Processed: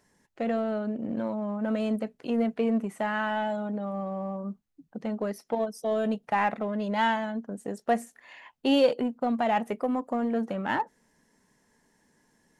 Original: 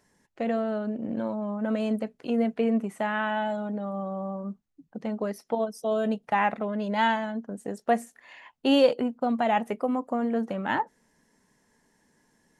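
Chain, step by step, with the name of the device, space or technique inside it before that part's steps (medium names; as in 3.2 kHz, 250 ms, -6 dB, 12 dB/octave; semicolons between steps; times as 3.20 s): parallel distortion (in parallel at -10.5 dB: hard clipper -27 dBFS, distortion -7 dB); on the sum: trim -2.5 dB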